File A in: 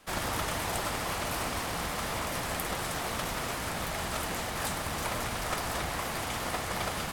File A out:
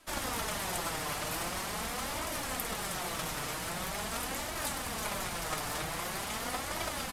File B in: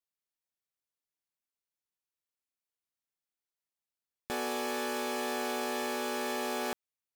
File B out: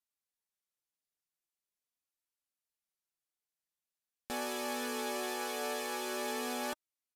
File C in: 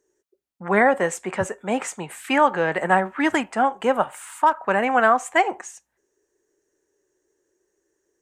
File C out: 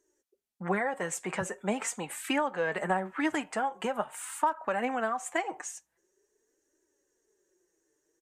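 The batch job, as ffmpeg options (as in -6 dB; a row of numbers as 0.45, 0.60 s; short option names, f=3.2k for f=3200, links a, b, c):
-af "highshelf=f=4.8k:g=5,acompressor=threshold=-23dB:ratio=6,flanger=delay=3:depth=3.9:regen=32:speed=0.44:shape=triangular,aresample=32000,aresample=44100"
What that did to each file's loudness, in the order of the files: -2.5, -3.0, -11.0 LU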